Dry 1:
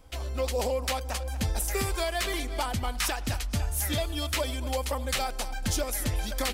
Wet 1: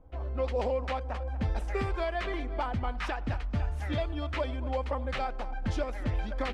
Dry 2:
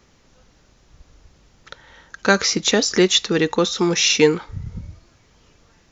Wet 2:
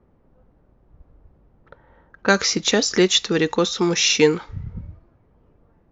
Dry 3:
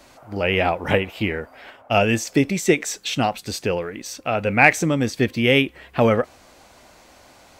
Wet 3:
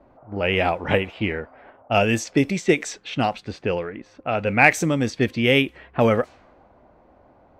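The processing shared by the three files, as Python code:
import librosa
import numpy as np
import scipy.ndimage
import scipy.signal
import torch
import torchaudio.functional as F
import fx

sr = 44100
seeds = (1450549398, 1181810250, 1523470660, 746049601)

y = fx.env_lowpass(x, sr, base_hz=780.0, full_db=-15.0)
y = y * librosa.db_to_amplitude(-1.0)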